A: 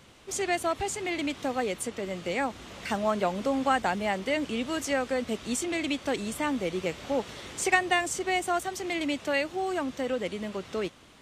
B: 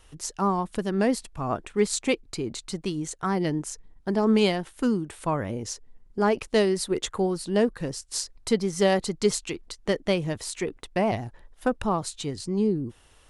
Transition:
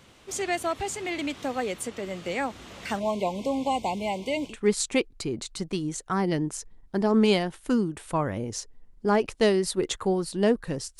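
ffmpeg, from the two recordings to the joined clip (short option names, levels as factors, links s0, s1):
-filter_complex "[0:a]asplit=3[s0][s1][s2];[s0]afade=t=out:st=2.99:d=0.02[s3];[s1]asuperstop=centerf=1500:order=20:qfactor=1.5,afade=t=in:st=2.99:d=0.02,afade=t=out:st=4.56:d=0.02[s4];[s2]afade=t=in:st=4.56:d=0.02[s5];[s3][s4][s5]amix=inputs=3:normalize=0,apad=whole_dur=10.99,atrim=end=10.99,atrim=end=4.56,asetpts=PTS-STARTPTS[s6];[1:a]atrim=start=1.57:end=8.12,asetpts=PTS-STARTPTS[s7];[s6][s7]acrossfade=d=0.12:c1=tri:c2=tri"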